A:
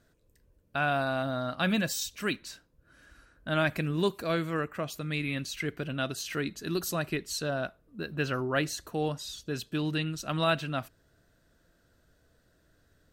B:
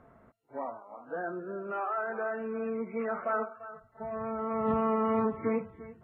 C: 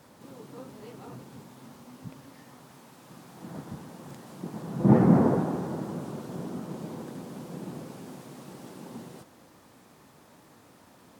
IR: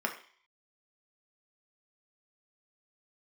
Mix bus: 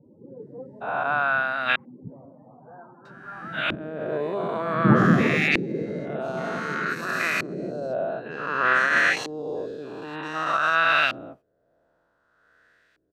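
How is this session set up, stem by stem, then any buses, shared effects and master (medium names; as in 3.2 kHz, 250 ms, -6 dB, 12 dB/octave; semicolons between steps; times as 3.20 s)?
-1.5 dB, 0.30 s, muted 1.76–3.05 s, bus A, no send, every event in the spectrogram widened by 480 ms; tremolo 1.3 Hz, depth 33%
-12.0 dB, 1.55 s, bus A, no send, none
+1.5 dB, 0.00 s, no bus, no send, peaking EQ 270 Hz -2.5 dB 0.51 oct; loudest bins only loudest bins 16
bus A: 0.0 dB, tilt EQ +4.5 dB/octave; peak limiter -11.5 dBFS, peak gain reduction 8 dB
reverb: none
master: treble shelf 8.5 kHz +10.5 dB; LFO low-pass saw up 0.54 Hz 340–2400 Hz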